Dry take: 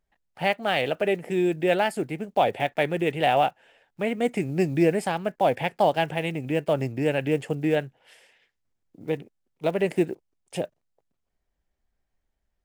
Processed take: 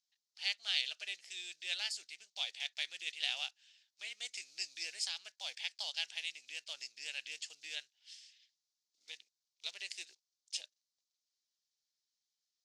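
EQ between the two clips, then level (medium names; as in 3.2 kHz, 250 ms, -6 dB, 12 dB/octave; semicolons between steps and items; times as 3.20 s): Butterworth band-pass 5.1 kHz, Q 1.9; +9.0 dB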